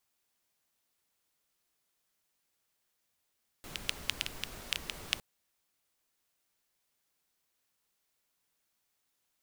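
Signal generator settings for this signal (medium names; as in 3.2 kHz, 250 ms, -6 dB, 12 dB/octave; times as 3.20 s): rain from filtered ticks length 1.56 s, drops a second 6.2, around 2.9 kHz, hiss -6 dB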